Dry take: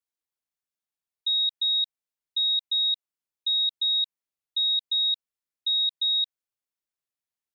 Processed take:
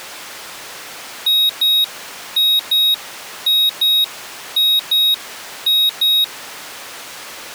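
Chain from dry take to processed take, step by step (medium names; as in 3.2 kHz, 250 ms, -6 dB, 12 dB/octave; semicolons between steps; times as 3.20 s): added noise pink -57 dBFS; overdrive pedal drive 26 dB, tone 3.5 kHz, clips at -20 dBFS; tilt EQ +2 dB/octave; trim +8 dB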